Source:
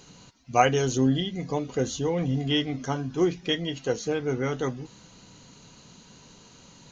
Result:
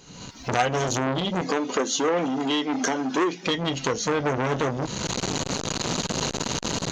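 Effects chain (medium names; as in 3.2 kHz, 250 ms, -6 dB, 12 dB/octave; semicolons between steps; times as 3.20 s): recorder AGC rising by 54 dB/s; 1.41–3.47 s: high-pass 240 Hz 24 dB/octave; transformer saturation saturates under 2.3 kHz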